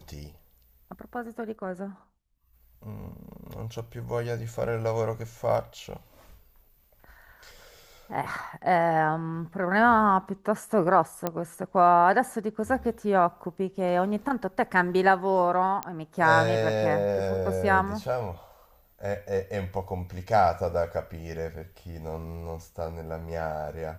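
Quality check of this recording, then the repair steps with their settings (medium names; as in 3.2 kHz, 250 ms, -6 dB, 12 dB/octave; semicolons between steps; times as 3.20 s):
11.27 s: pop -13 dBFS
15.83 s: pop -15 dBFS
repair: de-click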